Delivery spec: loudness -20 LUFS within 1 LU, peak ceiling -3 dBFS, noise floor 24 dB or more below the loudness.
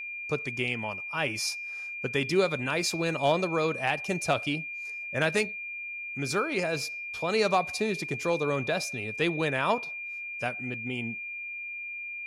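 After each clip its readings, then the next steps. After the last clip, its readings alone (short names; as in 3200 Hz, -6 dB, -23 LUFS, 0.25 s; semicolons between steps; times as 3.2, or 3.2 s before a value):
steady tone 2400 Hz; tone level -35 dBFS; loudness -29.5 LUFS; peak -13.0 dBFS; loudness target -20.0 LUFS
-> notch 2400 Hz, Q 30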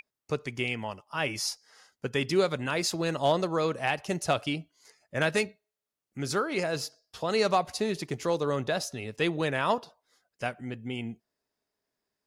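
steady tone none; loudness -30.0 LUFS; peak -13.5 dBFS; loudness target -20.0 LUFS
-> gain +10 dB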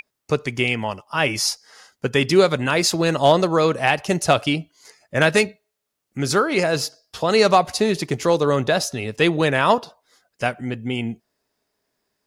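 loudness -20.0 LUFS; peak -3.5 dBFS; noise floor -79 dBFS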